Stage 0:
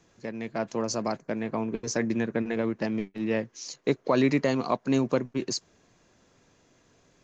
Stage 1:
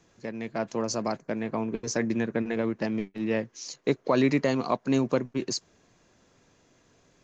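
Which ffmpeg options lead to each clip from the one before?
-af anull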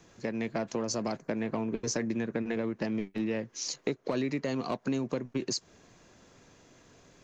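-filter_complex "[0:a]acrossover=split=550|1800[a][b][c];[b]asoftclip=type=tanh:threshold=-32.5dB[d];[a][d][c]amix=inputs=3:normalize=0,acompressor=threshold=-33dB:ratio=6,volume=4.5dB"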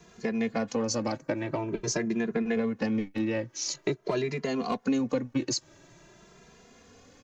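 -filter_complex "[0:a]asplit=2[a][b];[b]adelay=2.5,afreqshift=0.47[c];[a][c]amix=inputs=2:normalize=1,volume=6dB"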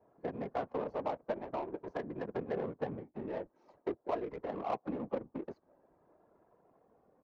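-af "bandpass=f=810:t=q:w=1.4:csg=0,afftfilt=real='hypot(re,im)*cos(2*PI*random(0))':imag='hypot(re,im)*sin(2*PI*random(1))':win_size=512:overlap=0.75,adynamicsmooth=sensitivity=8:basefreq=740,volume=5dB"

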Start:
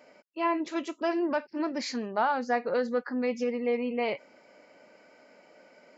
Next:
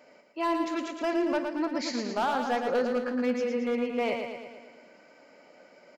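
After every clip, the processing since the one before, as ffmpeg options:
-filter_complex "[0:a]volume=22.5dB,asoftclip=hard,volume=-22.5dB,asplit=2[a][b];[b]aecho=0:1:113|226|339|452|565|678|791|904:0.531|0.308|0.179|0.104|0.0601|0.0348|0.0202|0.0117[c];[a][c]amix=inputs=2:normalize=0"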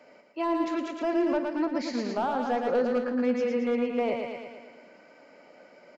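-filter_complex "[0:a]highshelf=f=6.5k:g=-9.5,acrossover=split=190|880[a][b][c];[c]alimiter=level_in=8.5dB:limit=-24dB:level=0:latency=1:release=211,volume=-8.5dB[d];[a][b][d]amix=inputs=3:normalize=0,volume=2dB"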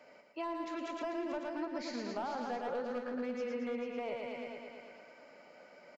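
-af "equalizer=f=290:t=o:w=1.5:g=-4.5,acompressor=threshold=-36dB:ratio=2.5,aecho=1:1:440:0.355,volume=-2.5dB"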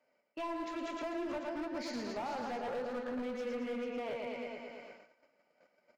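-af "agate=range=-19dB:threshold=-53dB:ratio=16:detection=peak,asoftclip=type=hard:threshold=-36dB,flanger=delay=7.7:depth=7.9:regen=-63:speed=0.49:shape=sinusoidal,volume=5.5dB"

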